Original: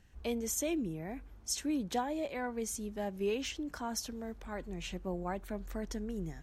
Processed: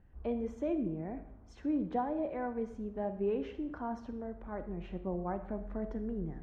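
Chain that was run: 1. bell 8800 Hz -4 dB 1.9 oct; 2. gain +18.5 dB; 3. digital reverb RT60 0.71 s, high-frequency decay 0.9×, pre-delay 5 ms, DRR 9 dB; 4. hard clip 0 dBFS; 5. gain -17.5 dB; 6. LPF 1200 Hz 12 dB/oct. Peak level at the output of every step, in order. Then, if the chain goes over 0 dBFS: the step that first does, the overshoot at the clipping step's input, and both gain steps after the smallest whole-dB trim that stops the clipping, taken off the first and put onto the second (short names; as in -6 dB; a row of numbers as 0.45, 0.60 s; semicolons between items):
-22.0, -3.5, -3.5, -3.5, -21.0, -22.0 dBFS; no overload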